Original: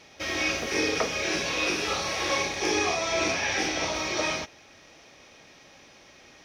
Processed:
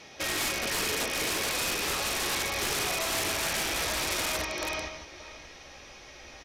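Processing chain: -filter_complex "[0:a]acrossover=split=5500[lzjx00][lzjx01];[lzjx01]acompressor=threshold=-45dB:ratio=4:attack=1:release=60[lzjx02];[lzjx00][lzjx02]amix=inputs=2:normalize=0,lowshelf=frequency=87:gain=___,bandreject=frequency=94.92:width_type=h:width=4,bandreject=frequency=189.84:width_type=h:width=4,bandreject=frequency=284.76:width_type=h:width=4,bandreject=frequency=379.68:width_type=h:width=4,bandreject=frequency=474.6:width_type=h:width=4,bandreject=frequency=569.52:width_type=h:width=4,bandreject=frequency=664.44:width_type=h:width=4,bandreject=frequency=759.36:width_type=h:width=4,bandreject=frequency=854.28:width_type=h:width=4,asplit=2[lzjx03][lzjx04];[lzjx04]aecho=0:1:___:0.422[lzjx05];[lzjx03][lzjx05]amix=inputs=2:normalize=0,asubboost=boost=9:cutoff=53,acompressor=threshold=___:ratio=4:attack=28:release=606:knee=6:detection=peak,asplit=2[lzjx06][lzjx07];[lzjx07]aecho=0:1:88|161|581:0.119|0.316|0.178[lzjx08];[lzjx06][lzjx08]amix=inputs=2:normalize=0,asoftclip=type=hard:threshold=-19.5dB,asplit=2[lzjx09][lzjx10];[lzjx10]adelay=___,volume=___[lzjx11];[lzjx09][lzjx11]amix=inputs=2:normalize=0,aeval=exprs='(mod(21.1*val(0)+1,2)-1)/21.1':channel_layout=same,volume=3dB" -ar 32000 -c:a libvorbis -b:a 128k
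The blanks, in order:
-3, 433, -30dB, 14, -11dB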